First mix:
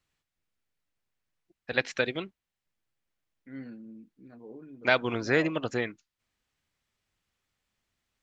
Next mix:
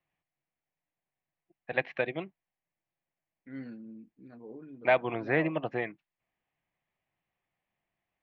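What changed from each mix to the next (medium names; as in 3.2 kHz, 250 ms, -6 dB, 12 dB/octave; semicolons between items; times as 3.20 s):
first voice: add cabinet simulation 150–2500 Hz, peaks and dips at 150 Hz +4 dB, 240 Hz -7 dB, 440 Hz -5 dB, 710 Hz +6 dB, 1.4 kHz -10 dB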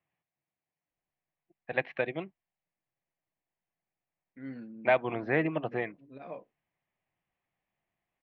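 second voice: entry +0.90 s; master: add distance through air 100 m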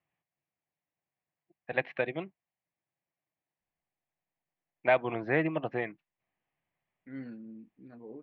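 second voice: entry +2.70 s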